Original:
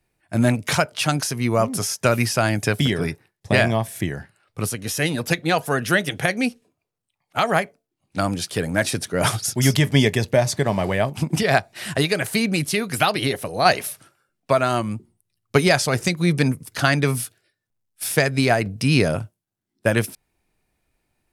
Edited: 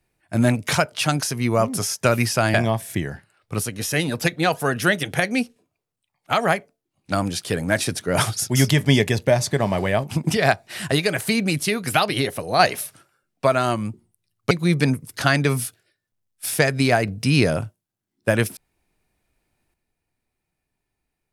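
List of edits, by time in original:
0:02.54–0:03.60: remove
0:15.57–0:16.09: remove

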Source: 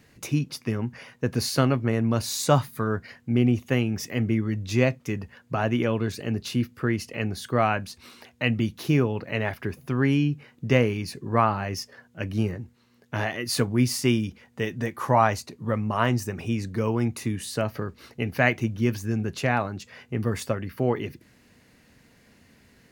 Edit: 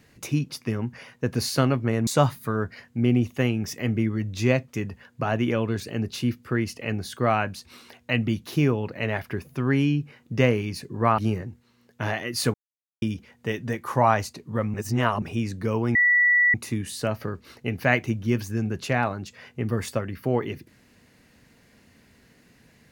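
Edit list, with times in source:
0:02.07–0:02.39: remove
0:11.50–0:12.31: remove
0:13.67–0:14.15: silence
0:15.87–0:16.35: reverse
0:17.08: insert tone 1,950 Hz −15.5 dBFS 0.59 s

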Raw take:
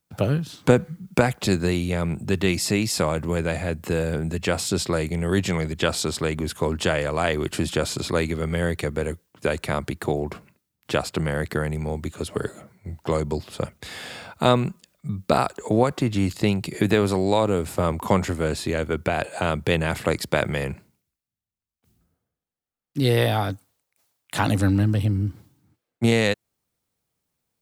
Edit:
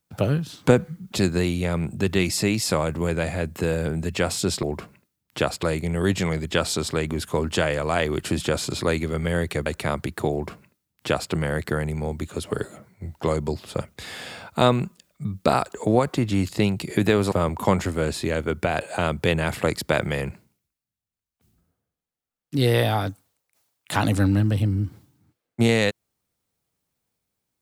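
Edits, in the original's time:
0:01.12–0:01.40: remove
0:08.94–0:09.50: remove
0:10.16–0:11.16: duplicate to 0:04.91
0:17.16–0:17.75: remove

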